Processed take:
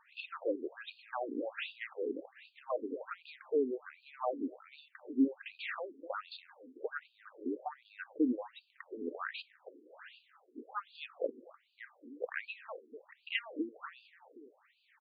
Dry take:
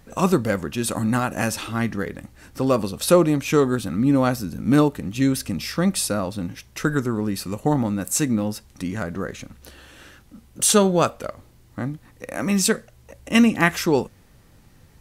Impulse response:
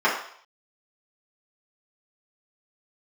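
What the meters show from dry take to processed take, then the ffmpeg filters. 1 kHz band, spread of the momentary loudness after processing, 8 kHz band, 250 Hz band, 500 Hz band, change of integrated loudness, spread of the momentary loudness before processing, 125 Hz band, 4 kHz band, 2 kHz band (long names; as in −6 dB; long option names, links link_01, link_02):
−17.0 dB, 21 LU, below −40 dB, −18.5 dB, −16.0 dB, −17.5 dB, 14 LU, below −40 dB, −18.0 dB, −15.0 dB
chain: -filter_complex "[0:a]highshelf=frequency=5700:gain=-12,acompressor=threshold=-25dB:ratio=6,asplit=2[link_01][link_02];[link_02]adelay=250,lowpass=frequency=1900:poles=1,volume=-18dB,asplit=2[link_03][link_04];[link_04]adelay=250,lowpass=frequency=1900:poles=1,volume=0.37,asplit=2[link_05][link_06];[link_06]adelay=250,lowpass=frequency=1900:poles=1,volume=0.37[link_07];[link_03][link_05][link_07]amix=inputs=3:normalize=0[link_08];[link_01][link_08]amix=inputs=2:normalize=0,acrossover=split=1300[link_09][link_10];[link_09]aeval=exprs='val(0)*(1-0.5/2+0.5/2*cos(2*PI*2.3*n/s))':channel_layout=same[link_11];[link_10]aeval=exprs='val(0)*(1-0.5/2-0.5/2*cos(2*PI*2.3*n/s))':channel_layout=same[link_12];[link_11][link_12]amix=inputs=2:normalize=0,afftfilt=real='re*between(b*sr/1024,320*pow(3500/320,0.5+0.5*sin(2*PI*1.3*pts/sr))/1.41,320*pow(3500/320,0.5+0.5*sin(2*PI*1.3*pts/sr))*1.41)':imag='im*between(b*sr/1024,320*pow(3500/320,0.5+0.5*sin(2*PI*1.3*pts/sr))/1.41,320*pow(3500/320,0.5+0.5*sin(2*PI*1.3*pts/sr))*1.41)':win_size=1024:overlap=0.75,volume=2.5dB"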